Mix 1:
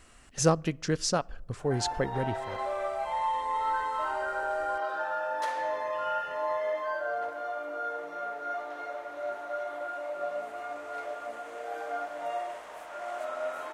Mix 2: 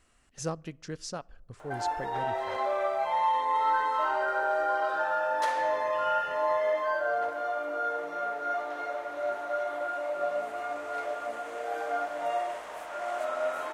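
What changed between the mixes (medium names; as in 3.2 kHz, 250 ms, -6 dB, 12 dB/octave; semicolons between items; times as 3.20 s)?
speech -10.0 dB; background +3.5 dB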